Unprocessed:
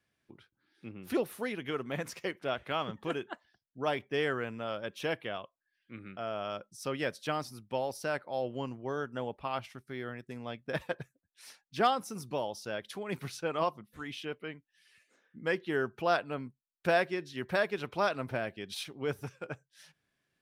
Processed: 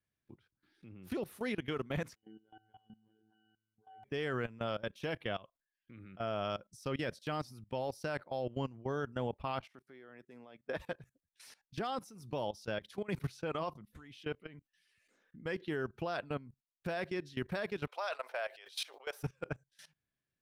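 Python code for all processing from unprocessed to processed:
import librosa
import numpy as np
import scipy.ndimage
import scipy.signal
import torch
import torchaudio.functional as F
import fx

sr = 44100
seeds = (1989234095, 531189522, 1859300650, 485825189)

y = fx.chain(x, sr, fx.octave_resonator(note='F#', decay_s=0.68),
    fx.robotise(hz=109.0),
    fx.sustainer(db_per_s=50.0), at=(2.15, 4.04))
y = fx.chain(y, sr, fx.highpass(hz=330.0, slope=12),
    fx.high_shelf(hz=3100.0, db=-8.5), at=(9.6, 10.78))
y = fx.chain(y, sr, fx.steep_highpass(hz=540.0, slope=36),
    fx.sustainer(db_per_s=110.0), at=(17.87, 19.23))
y = fx.dynamic_eq(y, sr, hz=4500.0, q=1.5, threshold_db=-51.0, ratio=4.0, max_db=3)
y = fx.level_steps(y, sr, step_db=19)
y = fx.low_shelf(y, sr, hz=150.0, db=11.0)
y = y * librosa.db_to_amplitude(1.0)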